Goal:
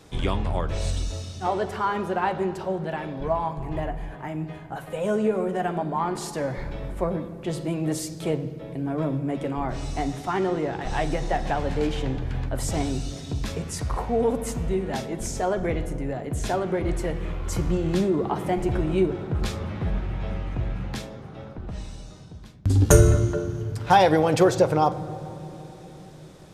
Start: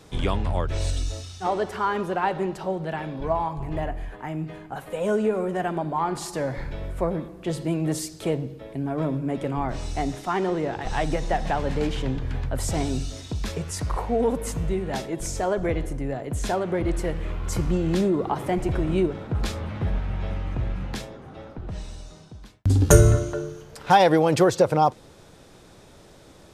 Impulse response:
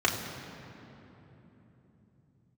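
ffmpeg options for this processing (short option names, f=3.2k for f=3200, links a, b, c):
-filter_complex "[0:a]asplit=2[a][b];[1:a]atrim=start_sample=2205,adelay=11[c];[b][c]afir=irnorm=-1:irlink=0,volume=-22dB[d];[a][d]amix=inputs=2:normalize=0,volume=-1dB"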